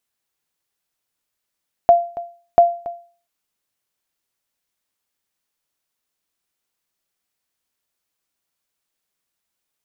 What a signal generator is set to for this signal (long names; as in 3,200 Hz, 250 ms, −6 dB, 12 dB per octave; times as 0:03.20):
ping with an echo 690 Hz, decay 0.41 s, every 0.69 s, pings 2, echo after 0.28 s, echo −18 dB −3 dBFS